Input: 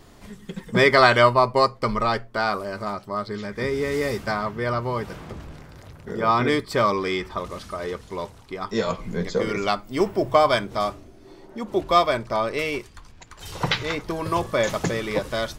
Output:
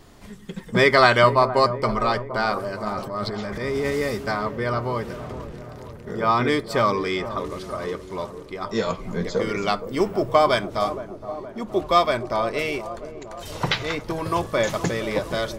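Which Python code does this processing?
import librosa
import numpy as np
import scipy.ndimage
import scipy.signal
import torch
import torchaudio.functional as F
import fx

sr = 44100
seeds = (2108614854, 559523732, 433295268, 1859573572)

y = fx.transient(x, sr, attack_db=-6, sustain_db=11, at=(2.88, 3.91))
y = fx.echo_wet_lowpass(y, sr, ms=468, feedback_pct=59, hz=930.0, wet_db=-11)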